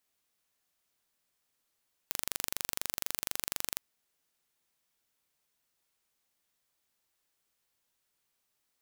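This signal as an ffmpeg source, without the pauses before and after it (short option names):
-f lavfi -i "aevalsrc='0.562*eq(mod(n,1830),0)':d=1.69:s=44100"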